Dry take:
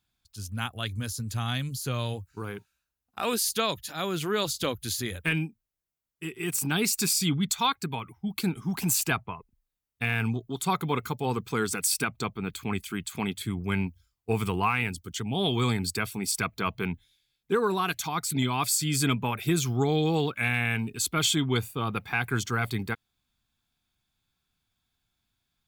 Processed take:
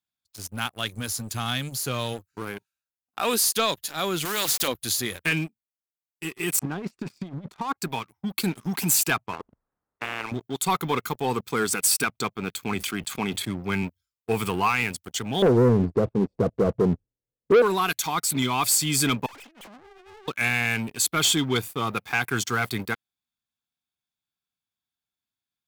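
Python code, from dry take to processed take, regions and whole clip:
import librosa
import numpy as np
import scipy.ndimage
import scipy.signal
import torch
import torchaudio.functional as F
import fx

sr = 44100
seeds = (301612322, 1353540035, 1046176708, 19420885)

y = fx.chain(x, sr, fx.sample_gate(floor_db=-41.0),
    fx.spectral_comp(ratio=2.0), at=(4.25, 4.68))
y = fx.chain(y, sr, fx.lowpass(hz=1000.0, slope=12),
    fx.over_compress(threshold_db=-31.0, ratio=-0.5), at=(6.59, 7.78))
y = fx.chain(y, sr, fx.lowpass(hz=1400.0, slope=24),
    fx.spectral_comp(ratio=10.0), at=(9.33, 10.32))
y = fx.chain(y, sr, fx.highpass(hz=53.0, slope=24),
    fx.high_shelf(hz=4600.0, db=-8.5),
    fx.sustainer(db_per_s=61.0), at=(12.75, 13.83))
y = fx.chain(y, sr, fx.lowpass_res(hz=530.0, q=5.8),
    fx.tilt_eq(slope=-3.5), at=(15.42, 17.62))
y = fx.chain(y, sr, fx.sine_speech(),
    fx.over_compress(threshold_db=-36.0, ratio=-1.0),
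    fx.tube_stage(drive_db=42.0, bias=0.7), at=(19.26, 20.28))
y = fx.highpass(y, sr, hz=220.0, slope=6)
y = fx.high_shelf(y, sr, hz=7800.0, db=3.5)
y = fx.leveller(y, sr, passes=3)
y = F.gain(torch.from_numpy(y), -6.5).numpy()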